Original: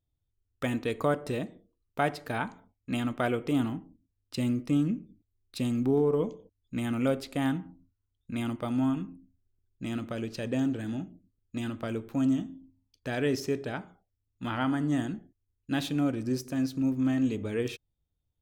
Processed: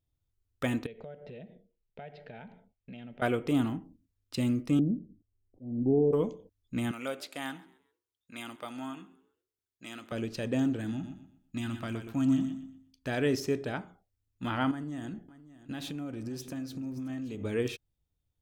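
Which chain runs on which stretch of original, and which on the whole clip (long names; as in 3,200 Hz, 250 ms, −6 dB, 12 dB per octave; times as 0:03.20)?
0:00.86–0:03.22: low-pass filter 3,200 Hz 24 dB per octave + phaser with its sweep stopped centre 300 Hz, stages 6 + downward compressor 4 to 1, threshold −44 dBFS
0:04.79–0:06.13: Butterworth low-pass 730 Hz 48 dB per octave + volume swells 266 ms
0:06.91–0:10.12: high-pass filter 1,200 Hz 6 dB per octave + echo with shifted repeats 133 ms, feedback 36%, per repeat +57 Hz, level −22 dB
0:10.91–0:13.07: parametric band 490 Hz −11.5 dB 0.72 octaves + repeating echo 121 ms, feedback 30%, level −8 dB
0:14.71–0:17.44: downward compressor 12 to 1, threshold −34 dBFS + single-tap delay 574 ms −16.5 dB
whole clip: no processing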